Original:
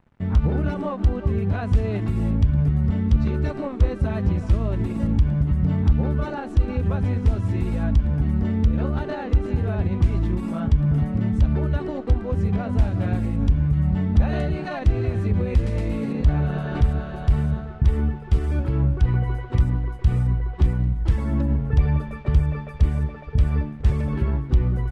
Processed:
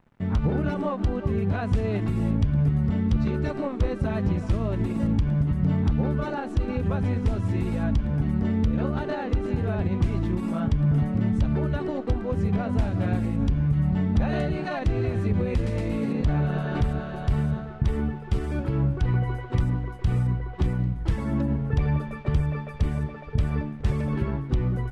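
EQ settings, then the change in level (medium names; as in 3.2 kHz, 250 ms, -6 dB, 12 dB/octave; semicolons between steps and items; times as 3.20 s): peaking EQ 64 Hz -10 dB 0.76 oct; 0.0 dB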